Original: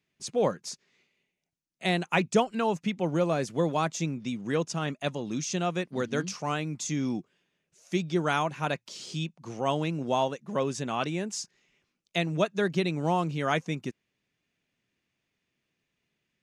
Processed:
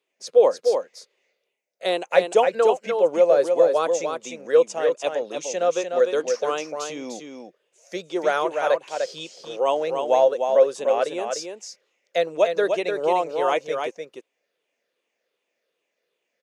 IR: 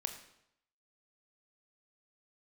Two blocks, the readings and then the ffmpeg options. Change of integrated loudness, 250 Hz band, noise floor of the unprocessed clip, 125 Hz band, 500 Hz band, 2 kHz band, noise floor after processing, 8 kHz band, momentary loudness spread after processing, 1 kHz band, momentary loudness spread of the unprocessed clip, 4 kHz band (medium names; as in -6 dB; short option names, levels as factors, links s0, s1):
+7.5 dB, -5.0 dB, -82 dBFS, under -15 dB, +11.5 dB, +2.5 dB, -79 dBFS, +2.0 dB, 16 LU, +5.5 dB, 8 LU, +2.0 dB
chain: -filter_complex "[0:a]afftfilt=real='re*pow(10,7/40*sin(2*PI*(0.64*log(max(b,1)*sr/1024/100)/log(2)-(-2.6)*(pts-256)/sr)))':imag='im*pow(10,7/40*sin(2*PI*(0.64*log(max(b,1)*sr/1024/100)/log(2)-(-2.6)*(pts-256)/sr)))':win_size=1024:overlap=0.75,highpass=f=510:t=q:w=4.9,asplit=2[s0][s1];[s1]aecho=0:1:299:0.531[s2];[s0][s2]amix=inputs=2:normalize=0"